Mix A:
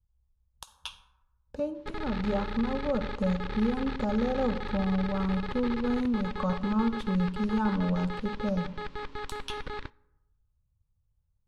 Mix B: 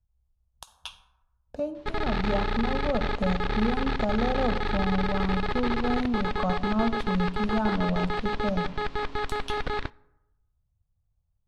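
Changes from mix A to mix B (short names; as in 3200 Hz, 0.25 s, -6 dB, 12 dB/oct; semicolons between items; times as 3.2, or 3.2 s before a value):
background +7.5 dB; master: remove Butterworth band-stop 690 Hz, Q 3.9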